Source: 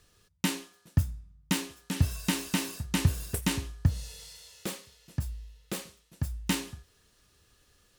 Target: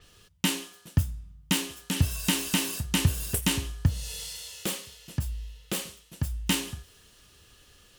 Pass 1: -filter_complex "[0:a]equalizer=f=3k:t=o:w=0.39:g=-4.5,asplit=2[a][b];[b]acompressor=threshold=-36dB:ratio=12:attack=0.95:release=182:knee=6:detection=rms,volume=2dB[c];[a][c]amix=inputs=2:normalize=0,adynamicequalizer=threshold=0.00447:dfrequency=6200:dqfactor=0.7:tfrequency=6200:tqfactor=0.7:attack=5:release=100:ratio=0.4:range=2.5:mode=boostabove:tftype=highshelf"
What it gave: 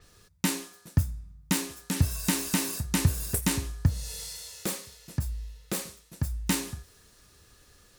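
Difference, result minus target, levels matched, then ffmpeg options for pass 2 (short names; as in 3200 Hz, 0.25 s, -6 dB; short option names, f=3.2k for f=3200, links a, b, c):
4000 Hz band -4.5 dB
-filter_complex "[0:a]equalizer=f=3k:t=o:w=0.39:g=6.5,asplit=2[a][b];[b]acompressor=threshold=-36dB:ratio=12:attack=0.95:release=182:knee=6:detection=rms,volume=2dB[c];[a][c]amix=inputs=2:normalize=0,adynamicequalizer=threshold=0.00447:dfrequency=6200:dqfactor=0.7:tfrequency=6200:tqfactor=0.7:attack=5:release=100:ratio=0.4:range=2.5:mode=boostabove:tftype=highshelf"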